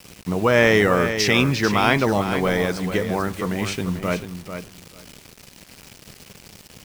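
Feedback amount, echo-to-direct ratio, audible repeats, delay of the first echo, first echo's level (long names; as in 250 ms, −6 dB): 16%, −9.0 dB, 2, 442 ms, −9.0 dB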